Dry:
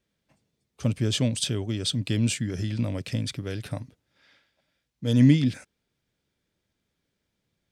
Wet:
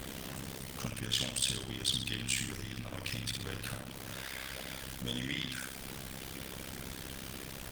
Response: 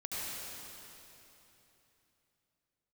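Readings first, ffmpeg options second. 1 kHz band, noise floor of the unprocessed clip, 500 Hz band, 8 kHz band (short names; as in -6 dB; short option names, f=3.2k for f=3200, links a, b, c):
+1.5 dB, -80 dBFS, -10.5 dB, -1.5 dB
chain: -filter_complex "[0:a]aeval=exprs='val(0)+0.5*0.0224*sgn(val(0))':c=same,equalizer=f=3.1k:t=o:w=0.21:g=3,aecho=1:1:63|126|189|252|315:0.562|0.247|0.109|0.0479|0.0211,acrossover=split=830[a][b];[a]acompressor=threshold=-35dB:ratio=10[c];[c][b]amix=inputs=2:normalize=0,aeval=exprs='val(0)+0.00282*(sin(2*PI*60*n/s)+sin(2*PI*2*60*n/s)/2+sin(2*PI*3*60*n/s)/3+sin(2*PI*4*60*n/s)/4+sin(2*PI*5*60*n/s)/5)':c=same,tremolo=f=66:d=0.857,asplit=2[d][e];[e]firequalizer=gain_entry='entry(220,0);entry(350,-9);entry(1200,-4);entry(2700,2);entry(3900,-11)':delay=0.05:min_phase=1[f];[1:a]atrim=start_sample=2205,asetrate=31752,aresample=44100,lowpass=5.7k[g];[f][g]afir=irnorm=-1:irlink=0,volume=-26dB[h];[d][h]amix=inputs=2:normalize=0" -ar 48000 -c:a libopus -b:a 24k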